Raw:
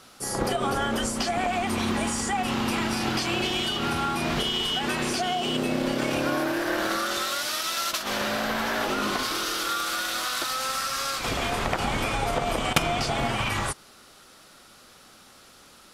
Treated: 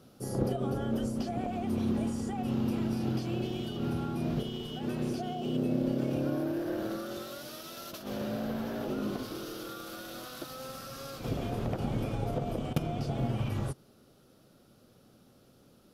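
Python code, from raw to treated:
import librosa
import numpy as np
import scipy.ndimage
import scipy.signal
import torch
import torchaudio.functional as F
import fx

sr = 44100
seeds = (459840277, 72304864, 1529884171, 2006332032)

y = fx.rider(x, sr, range_db=10, speed_s=0.5)
y = fx.graphic_eq(y, sr, hz=(125, 250, 500, 1000, 2000, 4000, 8000), db=(10, 4, 4, -8, -11, -5, -12))
y = y * librosa.db_to_amplitude(-8.0)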